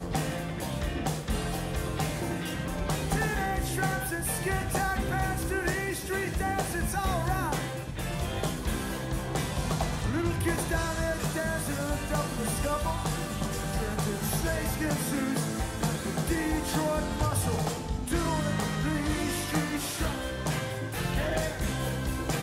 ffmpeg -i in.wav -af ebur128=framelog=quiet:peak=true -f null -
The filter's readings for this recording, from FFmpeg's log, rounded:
Integrated loudness:
  I:         -30.3 LUFS
  Threshold: -40.3 LUFS
Loudness range:
  LRA:         1.7 LU
  Threshold: -50.2 LUFS
  LRA low:   -31.1 LUFS
  LRA high:  -29.4 LUFS
True peak:
  Peak:      -14.6 dBFS